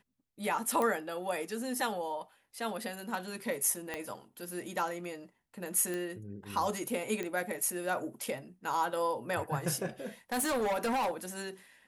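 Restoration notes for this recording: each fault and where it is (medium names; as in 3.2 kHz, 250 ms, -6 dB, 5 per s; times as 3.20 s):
0.82 s: pop -19 dBFS
3.94 s: pop -21 dBFS
5.94 s: pop
7.23 s: pop -22 dBFS
10.32–11.11 s: clipped -28 dBFS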